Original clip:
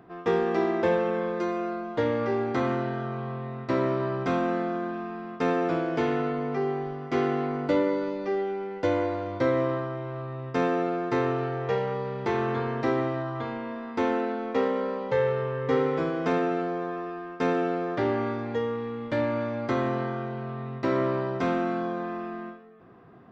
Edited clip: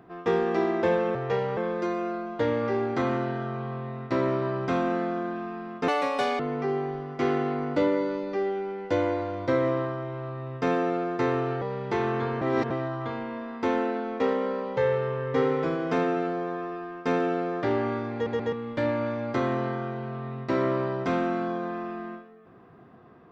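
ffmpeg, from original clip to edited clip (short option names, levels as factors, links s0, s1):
-filter_complex "[0:a]asplit=11[s0][s1][s2][s3][s4][s5][s6][s7][s8][s9][s10];[s0]atrim=end=1.152[s11];[s1]atrim=start=11.538:end=11.962[s12];[s2]atrim=start=1.148:end=5.464[s13];[s3]atrim=start=5.46:end=6.32,asetpts=PTS-STARTPTS,asetrate=73647,aresample=44100,atrim=end_sample=22710,asetpts=PTS-STARTPTS[s14];[s4]atrim=start=6.316:end=11.542[s15];[s5]atrim=start=11.958:end=12.762[s16];[s6]atrim=start=12.758:end=13.052,asetpts=PTS-STARTPTS,areverse[s17];[s7]atrim=start=13.048:end=18.612[s18];[s8]atrim=start=18.478:end=18.612[s19];[s9]atrim=start=18.478:end=18.612[s20];[s10]atrim=start=18.868[s21];[s11][s12]acrossfade=d=0.004:c1=hsin:c2=hsin[s22];[s22][s13]acrossfade=d=0.004:c1=hsin:c2=hsin[s23];[s23][s14]acrossfade=d=0.004:c1=hsin:c2=hsin[s24];[s24][s15]acrossfade=d=0.004:c1=hsin:c2=hsin[s25];[s25][s16]acrossfade=d=0.004:c1=hsin:c2=hsin[s26];[s26][s17]acrossfade=d=0.004:c1=hsin:c2=hsin[s27];[s27][s18]acrossfade=d=0.004:c1=hsin:c2=hsin[s28];[s28][s19]acrossfade=d=0.004:c1=hsin:c2=hsin[s29];[s29][s20]acrossfade=d=0.004:c1=hsin:c2=hsin[s30];[s30][s21]acrossfade=d=0.004:c1=hsin:c2=hsin"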